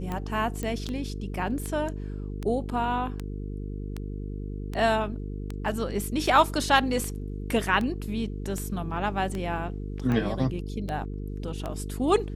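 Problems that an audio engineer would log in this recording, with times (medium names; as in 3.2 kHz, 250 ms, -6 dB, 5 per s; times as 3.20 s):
buzz 50 Hz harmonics 9 -34 dBFS
tick 78 rpm -19 dBFS
0.63 s: pop -18 dBFS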